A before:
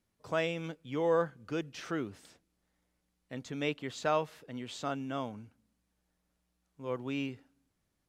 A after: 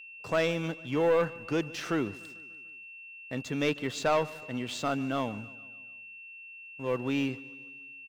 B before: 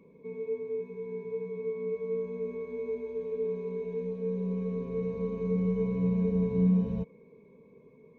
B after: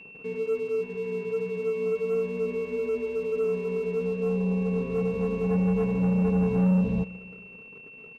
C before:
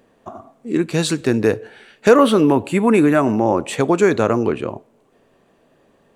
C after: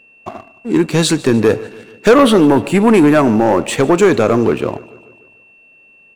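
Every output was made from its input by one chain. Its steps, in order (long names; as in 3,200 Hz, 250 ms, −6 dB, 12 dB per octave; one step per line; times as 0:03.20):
leveller curve on the samples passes 2
steady tone 2,700 Hz −44 dBFS
on a send: repeating echo 147 ms, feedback 58%, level −21 dB
on the sum: level −1 dB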